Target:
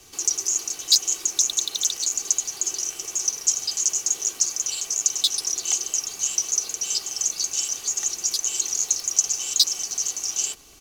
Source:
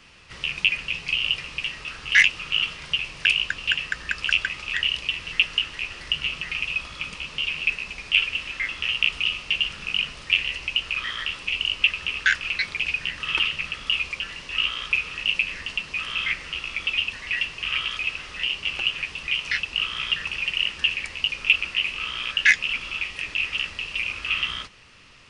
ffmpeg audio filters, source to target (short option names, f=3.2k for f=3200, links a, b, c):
-filter_complex "[0:a]aecho=1:1:6.1:0.57,acrossover=split=120[a][b];[a]aeval=exprs='(mod(355*val(0)+1,2)-1)/355':c=same[c];[c][b]amix=inputs=2:normalize=0,asetrate=103194,aresample=44100"